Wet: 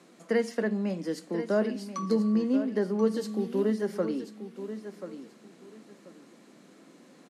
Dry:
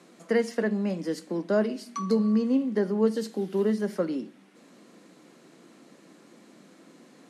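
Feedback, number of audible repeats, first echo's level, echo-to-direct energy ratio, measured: 22%, 2, -11.0 dB, -11.0 dB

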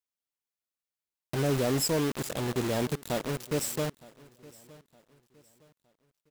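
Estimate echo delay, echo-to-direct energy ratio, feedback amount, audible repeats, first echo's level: 914 ms, -21.5 dB, 36%, 2, -22.0 dB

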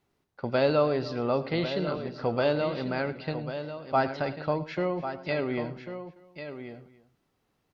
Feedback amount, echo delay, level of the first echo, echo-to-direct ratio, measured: no regular repeats, 108 ms, -17.5 dB, -8.5 dB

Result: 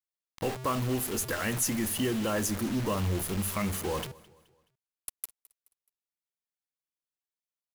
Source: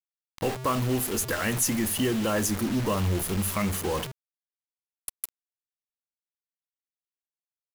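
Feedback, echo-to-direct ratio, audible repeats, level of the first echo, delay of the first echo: 42%, -21.5 dB, 2, -22.5 dB, 213 ms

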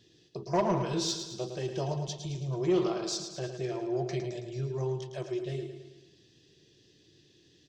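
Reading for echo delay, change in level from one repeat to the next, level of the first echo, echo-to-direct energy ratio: 109 ms, -5.5 dB, -8.0 dB, -6.5 dB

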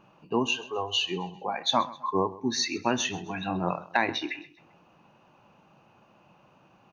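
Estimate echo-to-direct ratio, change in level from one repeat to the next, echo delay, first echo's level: -18.5 dB, -8.0 dB, 131 ms, -19.0 dB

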